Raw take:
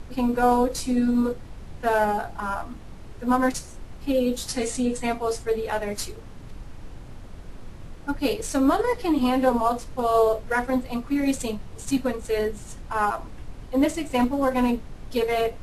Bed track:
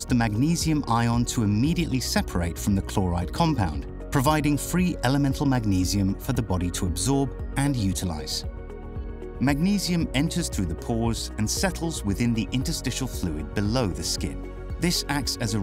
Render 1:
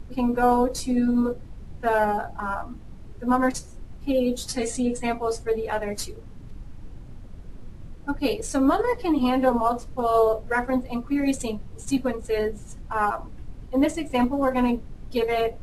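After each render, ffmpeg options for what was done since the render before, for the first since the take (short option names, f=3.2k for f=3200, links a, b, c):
-af "afftdn=nr=8:nf=-41"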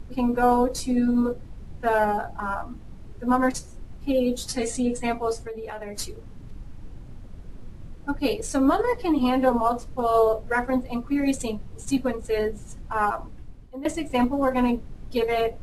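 -filter_complex "[0:a]asettb=1/sr,asplit=3[a][b][c];[a]atrim=end=5.334[d];[b]atrim=start=5.33:end=5.99,asetpts=PTS-STARTPTS,afade=t=in:d=0.004:c=qsin,afade=t=out:st=0.656:d=0.004:c=qsin,acompressor=threshold=-30dB:ratio=10:attack=3.2:release=140:knee=1:detection=peak[e];[c]atrim=start=5.986[f];[d][e]acrossfade=d=0.004:c1=hsin:c2=qsin[g];[g][f]acrossfade=d=0.004:c1=qsin:c2=hsin,asplit=2[h][i];[h]atrim=end=13.85,asetpts=PTS-STARTPTS,afade=t=out:st=13.22:d=0.63:silence=0.1[j];[i]atrim=start=13.85,asetpts=PTS-STARTPTS,afade=t=in:d=0.004:c=hsin:silence=0.1[k];[j][k]concat=n=2:v=0:a=1"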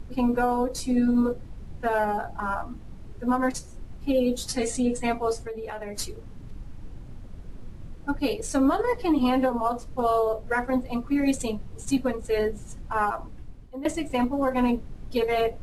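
-af "alimiter=limit=-14dB:level=0:latency=1:release=333"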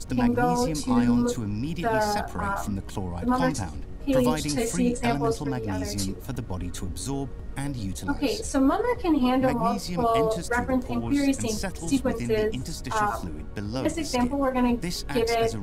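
-filter_complex "[1:a]volume=-7.5dB[a];[0:a][a]amix=inputs=2:normalize=0"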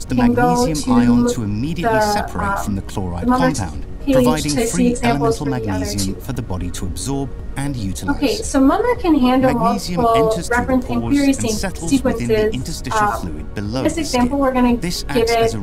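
-af "volume=8.5dB"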